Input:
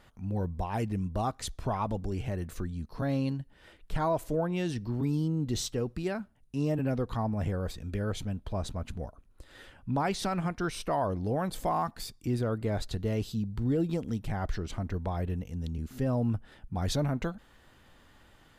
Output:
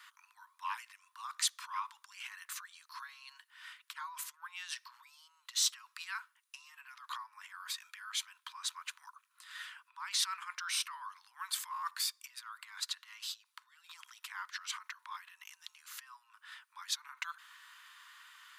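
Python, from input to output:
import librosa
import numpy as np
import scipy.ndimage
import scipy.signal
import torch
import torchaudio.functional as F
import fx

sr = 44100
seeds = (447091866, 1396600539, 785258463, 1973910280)

y = fx.high_shelf(x, sr, hz=11000.0, db=-6.0, at=(12.89, 13.46))
y = fx.over_compress(y, sr, threshold_db=-35.0, ratio=-1.0)
y = scipy.signal.sosfilt(scipy.signal.butter(16, 980.0, 'highpass', fs=sr, output='sos'), y)
y = y * 10.0 ** (3.0 / 20.0)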